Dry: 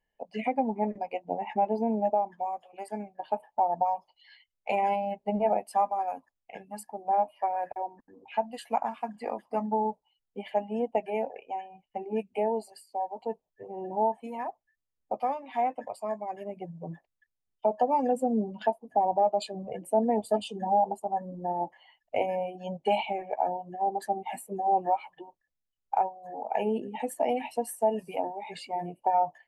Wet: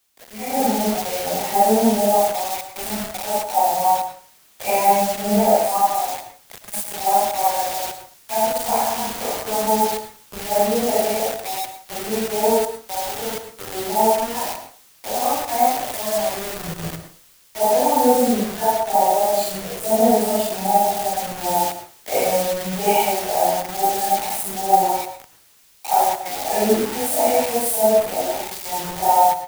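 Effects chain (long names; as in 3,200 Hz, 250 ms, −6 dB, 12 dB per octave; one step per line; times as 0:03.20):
random phases in long frames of 200 ms
in parallel at −11 dB: log-companded quantiser 4 bits
on the sum: parametric band 3,000 Hz −5 dB 0.49 octaves
bit reduction 6 bits
high-shelf EQ 8,100 Hz +11 dB
on a send at −7.5 dB: convolution reverb RT60 0.40 s, pre-delay 97 ms
on the sum: background noise white −53 dBFS
automatic gain control gain up to 10 dB
multiband upward and downward expander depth 40%
level −2 dB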